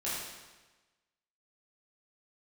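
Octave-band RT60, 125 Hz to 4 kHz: 1.2, 1.2, 1.2, 1.2, 1.2, 1.1 s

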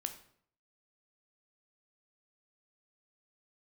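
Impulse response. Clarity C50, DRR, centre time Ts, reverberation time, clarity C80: 11.5 dB, 6.5 dB, 10 ms, 0.60 s, 14.5 dB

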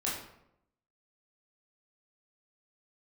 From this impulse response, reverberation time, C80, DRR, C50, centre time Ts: 0.80 s, 6.5 dB, -6.5 dB, 3.0 dB, 48 ms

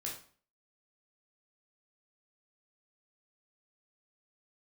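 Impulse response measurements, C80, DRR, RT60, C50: 10.5 dB, -3.5 dB, 0.45 s, 5.5 dB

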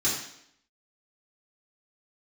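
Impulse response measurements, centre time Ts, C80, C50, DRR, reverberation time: 45 ms, 6.5 dB, 3.5 dB, -8.5 dB, 0.70 s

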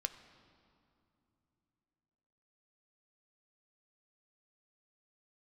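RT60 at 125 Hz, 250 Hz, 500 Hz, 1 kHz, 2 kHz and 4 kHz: 3.9, 3.8, 3.0, 2.7, 2.0, 1.8 s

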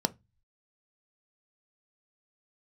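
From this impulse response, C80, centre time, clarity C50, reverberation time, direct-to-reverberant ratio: 35.5 dB, 2 ms, 24.5 dB, 0.20 s, 11.0 dB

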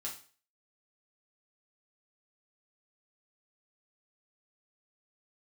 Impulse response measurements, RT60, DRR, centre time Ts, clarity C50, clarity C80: 0.40 s, -3.5 dB, 22 ms, 8.5 dB, 13.5 dB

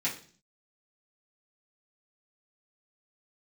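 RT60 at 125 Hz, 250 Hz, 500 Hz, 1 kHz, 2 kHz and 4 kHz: 0.70, 0.65, 0.50, 0.40, 0.40, 0.50 s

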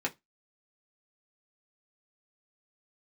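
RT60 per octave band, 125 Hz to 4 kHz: 0.20, 0.20, 0.15, 0.15, 0.15, 0.20 s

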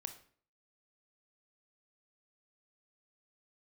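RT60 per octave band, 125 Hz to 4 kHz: 0.60, 0.55, 0.55, 0.45, 0.45, 0.40 s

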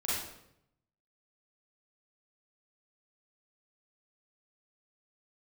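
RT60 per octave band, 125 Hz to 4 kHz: 1.1, 0.90, 0.85, 0.70, 0.65, 0.60 s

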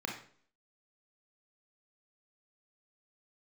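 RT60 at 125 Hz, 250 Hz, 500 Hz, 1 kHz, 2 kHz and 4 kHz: 0.55, 0.60, 0.55, 0.50, 0.45, 0.45 s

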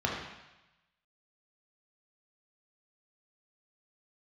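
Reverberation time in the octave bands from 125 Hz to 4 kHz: 1.1, 0.90, 0.95, 1.0, 1.1, 1.1 s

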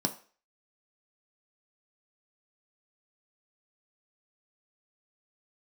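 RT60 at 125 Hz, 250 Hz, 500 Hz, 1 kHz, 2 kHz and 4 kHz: 0.30, 0.35, 0.40, 0.40, 0.40, 0.40 s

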